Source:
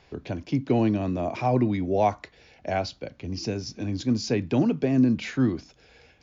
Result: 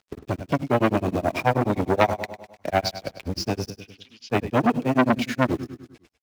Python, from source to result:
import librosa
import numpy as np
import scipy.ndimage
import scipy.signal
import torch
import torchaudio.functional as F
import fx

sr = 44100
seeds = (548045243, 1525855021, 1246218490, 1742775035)

p1 = fx.quant_dither(x, sr, seeds[0], bits=6, dither='none')
p2 = x + (p1 * librosa.db_to_amplitude(-10.0))
p3 = p2 * (1.0 - 0.99 / 2.0 + 0.99 / 2.0 * np.cos(2.0 * np.pi * 9.4 * (np.arange(len(p2)) / sr)))
p4 = np.sign(p3) * np.maximum(np.abs(p3) - 10.0 ** (-54.0 / 20.0), 0.0)
p5 = fx.bandpass_q(p4, sr, hz=2900.0, q=5.2, at=(3.7, 4.3))
p6 = p5 + fx.echo_feedback(p5, sr, ms=101, feedback_pct=52, wet_db=-13.5, dry=0)
p7 = fx.transformer_sat(p6, sr, knee_hz=1400.0)
y = p7 * librosa.db_to_amplitude(7.5)